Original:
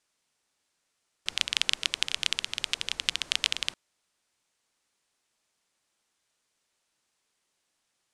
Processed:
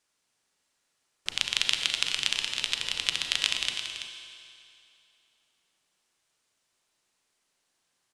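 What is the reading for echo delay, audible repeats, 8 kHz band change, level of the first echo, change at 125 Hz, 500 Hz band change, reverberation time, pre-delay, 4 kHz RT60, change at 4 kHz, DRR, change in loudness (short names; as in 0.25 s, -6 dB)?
0.333 s, 1, +1.5 dB, -9.5 dB, +2.5 dB, +1.5 dB, 2.6 s, 33 ms, 2.5 s, +1.5 dB, 3.5 dB, +1.0 dB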